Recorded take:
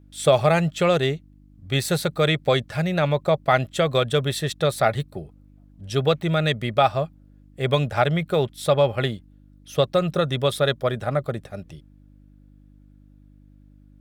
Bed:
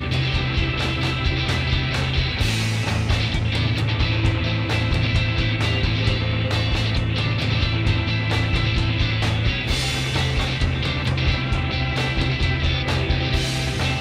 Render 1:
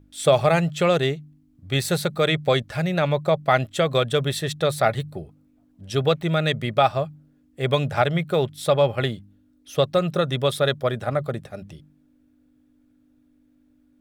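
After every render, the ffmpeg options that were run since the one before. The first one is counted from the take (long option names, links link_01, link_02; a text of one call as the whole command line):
ffmpeg -i in.wav -af "bandreject=frequency=50:width_type=h:width=4,bandreject=frequency=100:width_type=h:width=4,bandreject=frequency=150:width_type=h:width=4,bandreject=frequency=200:width_type=h:width=4" out.wav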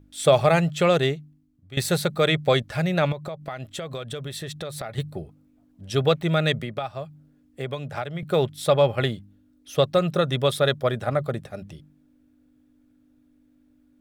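ffmpeg -i in.wav -filter_complex "[0:a]asettb=1/sr,asplit=3[link_01][link_02][link_03];[link_01]atrim=end=3.124[link_04];[link_02]atrim=start=3.12:end=4.98,asetpts=PTS-STARTPTS,afade=type=in:duration=0.004:curve=qsin,afade=type=out:start_time=1.856:duration=0.004:curve=qsin,acompressor=threshold=-30dB:ratio=6:attack=3.2:release=140:knee=1:detection=peak[link_05];[link_03]atrim=start=4.976[link_06];[link_04][link_05]acrossfade=duration=0.004:curve1=hsin:curve2=qsin[link_07];[link_07][link_06]acrossfade=duration=0.004:curve1=qsin:curve2=hsin,asettb=1/sr,asplit=3[link_08][link_09][link_10];[link_08]atrim=end=6.594[link_11];[link_09]atrim=start=6.59:end=8.23,asetpts=PTS-STARTPTS,afade=type=in:duration=0.004:curve=qsin,afade=type=out:start_time=1.636:duration=0.004:curve=qsin,acrossover=split=110|1900[link_12][link_13][link_14];[link_12]acompressor=threshold=-48dB:ratio=4[link_15];[link_13]acompressor=threshold=-30dB:ratio=4[link_16];[link_14]acompressor=threshold=-43dB:ratio=4[link_17];[link_15][link_16][link_17]amix=inputs=3:normalize=0[link_18];[link_10]atrim=start=8.226[link_19];[link_11][link_18]acrossfade=duration=0.004:curve1=hsin:curve2=qsin[link_20];[link_20][link_19]acrossfade=duration=0.004:curve1=qsin:curve2=hsin,asplit=2[link_21][link_22];[link_21]atrim=end=1.77,asetpts=PTS-STARTPTS,afade=type=out:start_time=1.05:duration=0.72:silence=0.141254[link_23];[link_22]atrim=start=1.77,asetpts=PTS-STARTPTS,afade=type=in:duration=0.004:curve=hsin:silence=0.141254[link_24];[link_23][link_24]concat=n=2:v=0:a=1" out.wav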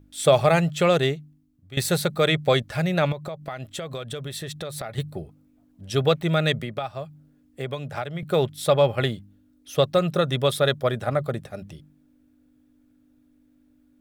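ffmpeg -i in.wav -af "highshelf=frequency=9900:gain=4" out.wav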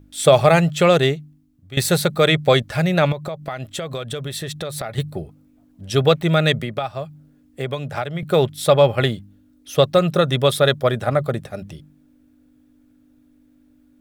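ffmpeg -i in.wav -af "volume=5dB,alimiter=limit=-1dB:level=0:latency=1" out.wav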